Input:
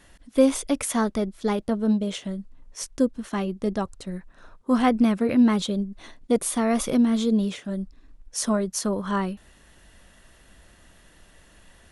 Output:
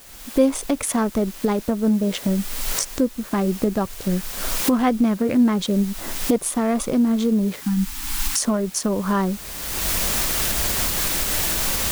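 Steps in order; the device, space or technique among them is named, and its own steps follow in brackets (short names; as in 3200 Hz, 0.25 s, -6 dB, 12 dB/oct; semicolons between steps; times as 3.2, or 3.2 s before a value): Wiener smoothing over 15 samples; cheap recorder with automatic gain (white noise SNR 22 dB; recorder AGC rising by 29 dB/s); spectral delete 7.61–8.39, 350–740 Hz; gain +1 dB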